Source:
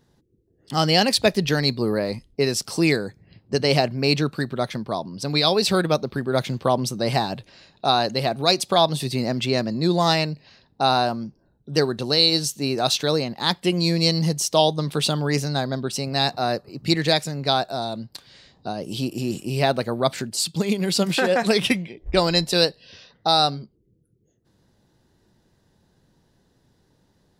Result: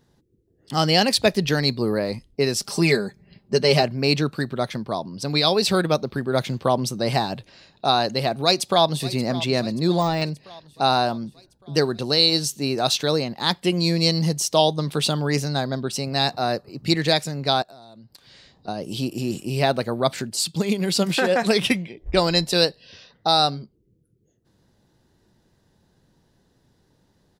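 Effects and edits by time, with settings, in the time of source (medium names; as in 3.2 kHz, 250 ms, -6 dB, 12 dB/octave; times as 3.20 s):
2.60–3.83 s: comb 5 ms
8.44–9.13 s: echo throw 580 ms, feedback 60%, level -16.5 dB
9.80–10.22 s: de-esser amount 70%
17.62–18.68 s: compression 5:1, threshold -44 dBFS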